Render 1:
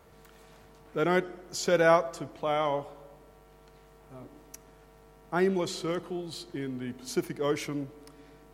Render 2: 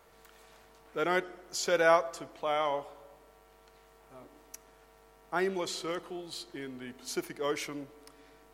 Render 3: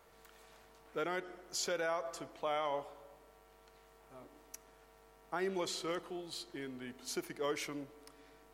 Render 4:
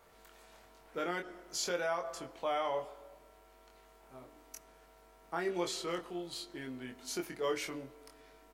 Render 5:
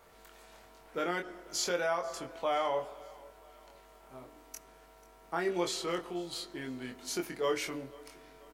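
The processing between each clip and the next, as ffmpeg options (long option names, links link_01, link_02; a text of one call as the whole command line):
ffmpeg -i in.wav -af "equalizer=frequency=120:width_type=o:width=2.8:gain=-12.5" out.wav
ffmpeg -i in.wav -af "alimiter=limit=-23dB:level=0:latency=1:release=128,volume=-3dB" out.wav
ffmpeg -i in.wav -filter_complex "[0:a]asplit=2[link_01][link_02];[link_02]adelay=23,volume=-4dB[link_03];[link_01][link_03]amix=inputs=2:normalize=0" out.wav
ffmpeg -i in.wav -af "aecho=1:1:489|978|1467:0.075|0.036|0.0173,volume=3dB" out.wav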